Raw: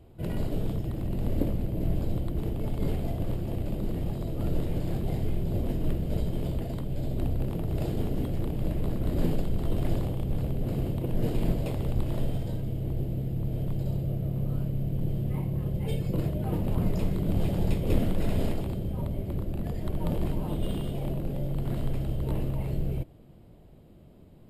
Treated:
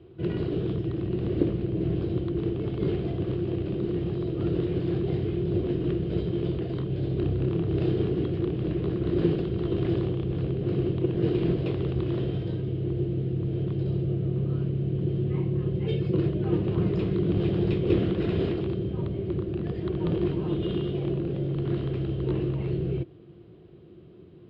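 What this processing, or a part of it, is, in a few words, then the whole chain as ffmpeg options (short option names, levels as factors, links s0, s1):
guitar cabinet: -filter_complex "[0:a]asettb=1/sr,asplit=3[s0][s1][s2];[s0]atrim=end=6.724[s3];[s1]atrim=start=6.72:end=8.14,asetpts=PTS-STARTPTS,afade=t=in:d=0.004:c=qsin,afade=t=out:st=1.416:d=0.004:c=qsin,asplit=2[s4][s5];[s5]adelay=30,volume=0.447[s6];[s4][s6]amix=inputs=2:normalize=0,atrim=end_sample=62622[s7];[s2]atrim=start=8.136[s8];[s3][s7]acrossfade=d=0.004:c1=hsin:c2=qsin[s9];[s9][s8]acrossfade=d=0.004:c1=qsin:c2=hsin,highpass=110,equalizer=f=240:t=q:w=4:g=-10,equalizer=f=360:t=q:w=4:g=10,equalizer=f=600:t=q:w=4:g=-10,equalizer=f=860:t=q:w=4:g=-10,equalizer=f=2100:t=q:w=4:g=-4,lowpass=f=3800:w=0.5412,lowpass=f=3800:w=1.3066,volume=1.78"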